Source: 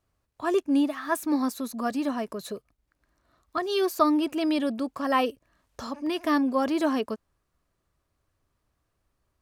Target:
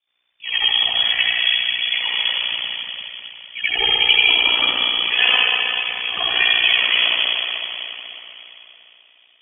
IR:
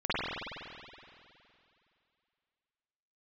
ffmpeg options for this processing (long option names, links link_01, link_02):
-filter_complex "[0:a]lowpass=frequency=3100:width_type=q:width=0.5098,lowpass=frequency=3100:width_type=q:width=0.6013,lowpass=frequency=3100:width_type=q:width=0.9,lowpass=frequency=3100:width_type=q:width=2.563,afreqshift=-3600[link_01];[1:a]atrim=start_sample=2205,asetrate=33516,aresample=44100[link_02];[link_01][link_02]afir=irnorm=-1:irlink=0,aeval=exprs='val(0)*sin(2*PI*30*n/s)':channel_layout=same,volume=2.5dB"